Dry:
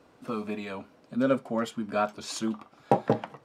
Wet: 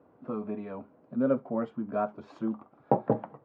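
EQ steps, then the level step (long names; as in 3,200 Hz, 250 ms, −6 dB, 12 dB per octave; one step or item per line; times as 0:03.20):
high-pass filter 76 Hz
low-pass filter 1,000 Hz 12 dB per octave
−1.0 dB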